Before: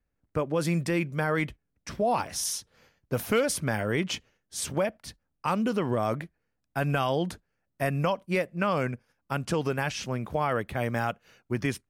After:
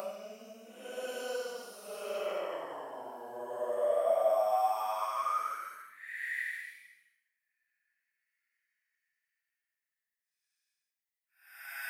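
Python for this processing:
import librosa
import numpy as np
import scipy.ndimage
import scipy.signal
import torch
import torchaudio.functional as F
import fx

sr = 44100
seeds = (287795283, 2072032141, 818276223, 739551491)

y = fx.paulstretch(x, sr, seeds[0], factor=9.8, window_s=0.1, from_s=5.56)
y = librosa.effects.preemphasis(y, coef=0.8, zi=[0.0])
y = fx.filter_sweep_highpass(y, sr, from_hz=630.0, to_hz=1900.0, start_s=4.34, end_s=6.08, q=7.0)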